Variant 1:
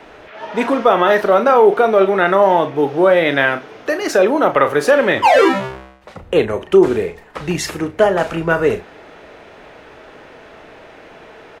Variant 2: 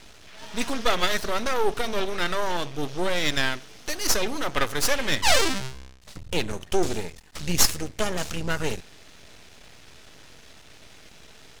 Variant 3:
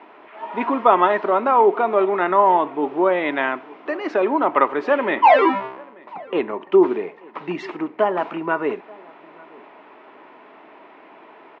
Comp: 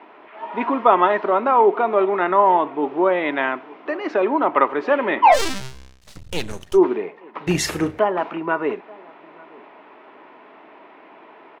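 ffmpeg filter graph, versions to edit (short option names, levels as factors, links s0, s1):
-filter_complex "[2:a]asplit=3[s0][s1][s2];[s0]atrim=end=5.41[s3];[1:a]atrim=start=5.31:end=6.79[s4];[s1]atrim=start=6.69:end=7.472[s5];[0:a]atrim=start=7.468:end=7.992[s6];[s2]atrim=start=7.988[s7];[s3][s4]acrossfade=d=0.1:c1=tri:c2=tri[s8];[s8][s5]acrossfade=d=0.1:c1=tri:c2=tri[s9];[s9][s6]acrossfade=d=0.004:c1=hsin:c2=hsin[s10];[s10][s7]acrossfade=d=0.004:c1=hsin:c2=hsin"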